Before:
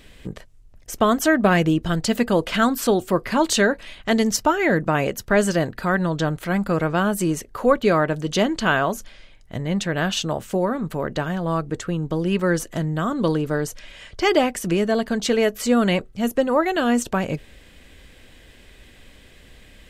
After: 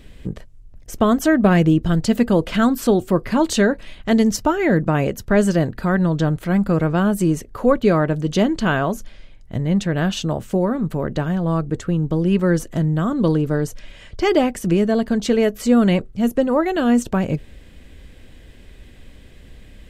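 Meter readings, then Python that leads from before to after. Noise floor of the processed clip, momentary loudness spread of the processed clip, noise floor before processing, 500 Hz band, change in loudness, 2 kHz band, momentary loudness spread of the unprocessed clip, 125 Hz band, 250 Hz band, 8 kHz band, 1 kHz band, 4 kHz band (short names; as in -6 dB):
-44 dBFS, 7 LU, -49 dBFS, +1.5 dB, +2.5 dB, -2.5 dB, 8 LU, +5.5 dB, +4.5 dB, -3.0 dB, -1.0 dB, -3.0 dB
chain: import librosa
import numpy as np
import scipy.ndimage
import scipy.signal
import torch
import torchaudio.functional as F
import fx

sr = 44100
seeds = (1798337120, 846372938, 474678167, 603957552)

y = fx.low_shelf(x, sr, hz=430.0, db=10.0)
y = y * 10.0 ** (-3.0 / 20.0)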